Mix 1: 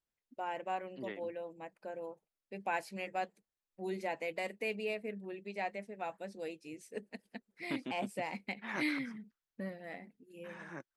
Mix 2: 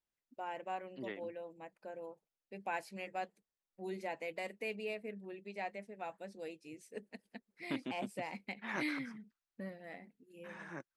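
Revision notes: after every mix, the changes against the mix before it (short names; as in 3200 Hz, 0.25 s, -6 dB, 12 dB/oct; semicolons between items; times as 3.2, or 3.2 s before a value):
first voice -3.5 dB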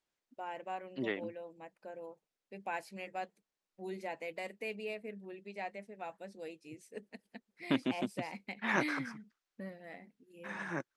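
second voice +8.5 dB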